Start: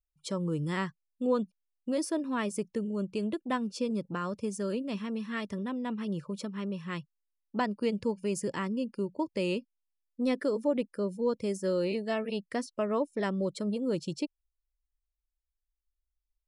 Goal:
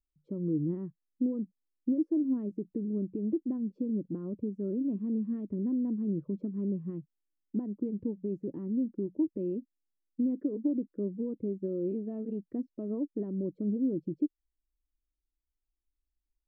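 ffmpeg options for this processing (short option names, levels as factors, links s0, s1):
-filter_complex "[0:a]aemphasis=mode=production:type=cd,alimiter=level_in=1.58:limit=0.0631:level=0:latency=1:release=309,volume=0.631,asplit=3[s0][s1][s2];[s0]afade=t=out:st=8.39:d=0.02[s3];[s1]acrusher=bits=5:mode=log:mix=0:aa=0.000001,afade=t=in:st=8.39:d=0.02,afade=t=out:st=9.13:d=0.02[s4];[s2]afade=t=in:st=9.13:d=0.02[s5];[s3][s4][s5]amix=inputs=3:normalize=0,lowpass=f=310:t=q:w=3.6"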